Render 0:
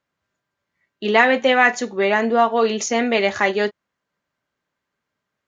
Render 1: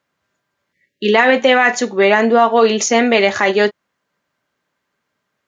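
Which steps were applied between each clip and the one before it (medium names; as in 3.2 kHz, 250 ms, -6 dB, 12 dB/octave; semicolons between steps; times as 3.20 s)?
spectral selection erased 0.73–1.13 s, 590–1600 Hz; bass shelf 68 Hz -11.5 dB; loudness maximiser +8 dB; trim -1 dB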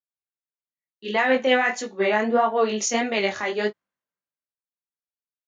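chorus 1.6 Hz, delay 18.5 ms, depth 5.1 ms; three bands expanded up and down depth 70%; trim -6.5 dB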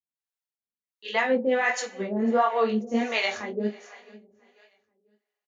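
feedback delay 493 ms, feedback 36%, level -21.5 dB; reverberation, pre-delay 3 ms, DRR 5.5 dB; harmonic tremolo 1.4 Hz, depth 100%, crossover 500 Hz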